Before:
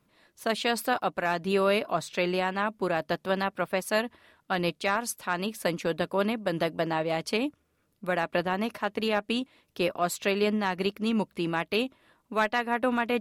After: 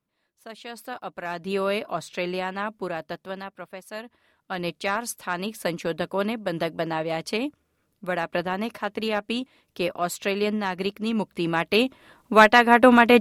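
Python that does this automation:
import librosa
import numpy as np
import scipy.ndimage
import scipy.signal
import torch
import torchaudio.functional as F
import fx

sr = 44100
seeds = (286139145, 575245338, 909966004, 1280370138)

y = fx.gain(x, sr, db=fx.line((0.56, -13.0), (1.53, -1.0), (2.73, -1.0), (3.82, -11.5), (4.83, 1.0), (11.14, 1.0), (12.35, 12.0)))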